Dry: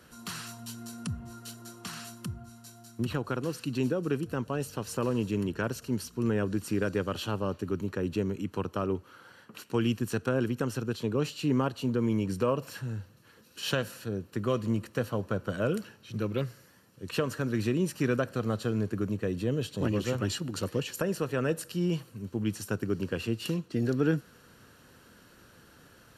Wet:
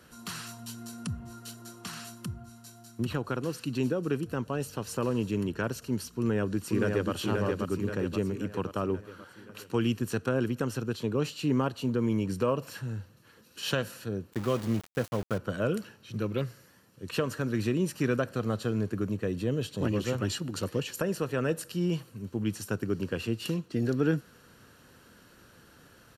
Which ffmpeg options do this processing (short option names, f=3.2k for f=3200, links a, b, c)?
-filter_complex "[0:a]asplit=2[a][b];[b]afade=t=in:st=6.17:d=0.01,afade=t=out:st=7.12:d=0.01,aecho=0:1:530|1060|1590|2120|2650|3180|3710|4240:0.707946|0.38937|0.214154|0.117784|0.0647815|0.0356298|0.0195964|0.010778[c];[a][c]amix=inputs=2:normalize=0,asettb=1/sr,asplit=3[d][e][f];[d]atrim=end=14.334[g];[e]atrim=start=14.33:end=15.38,asetpts=PTS-STARTPTS,afade=t=in:d=0.004:c=qsin,afade=t=out:st=1.046:d=0.004:c=qsin,aeval=exprs='val(0)*gte(abs(val(0)),0.0141)':c=same[h];[f]atrim=start=15.376[i];[g][h]acrossfade=d=0.004:c1=hsin:c2=qsin[j];[j][i]acrossfade=d=0.004:c1=qsin:c2=hsin"